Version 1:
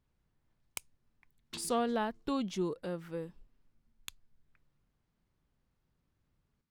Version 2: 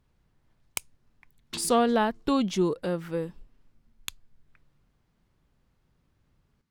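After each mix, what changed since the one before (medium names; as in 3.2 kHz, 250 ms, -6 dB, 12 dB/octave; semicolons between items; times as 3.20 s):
speech +9.0 dB; background +7.5 dB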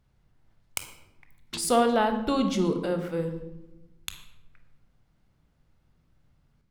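speech -3.5 dB; reverb: on, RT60 0.95 s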